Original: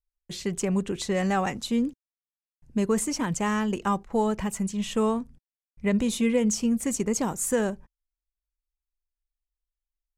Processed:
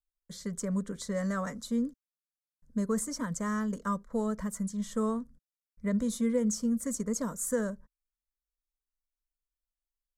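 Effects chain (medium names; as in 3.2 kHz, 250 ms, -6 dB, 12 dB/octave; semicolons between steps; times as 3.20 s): static phaser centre 530 Hz, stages 8; trim -4.5 dB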